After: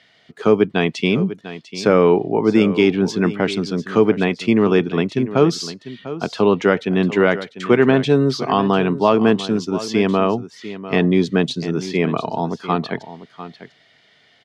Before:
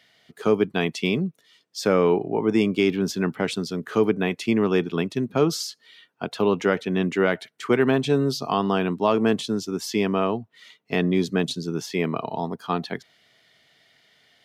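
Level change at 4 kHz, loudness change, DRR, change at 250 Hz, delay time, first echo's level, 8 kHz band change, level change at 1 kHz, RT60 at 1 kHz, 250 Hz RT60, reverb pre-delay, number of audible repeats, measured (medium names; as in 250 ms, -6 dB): +4.0 dB, +6.0 dB, no reverb, +6.0 dB, 697 ms, -14.0 dB, 0.0 dB, +6.0 dB, no reverb, no reverb, no reverb, 1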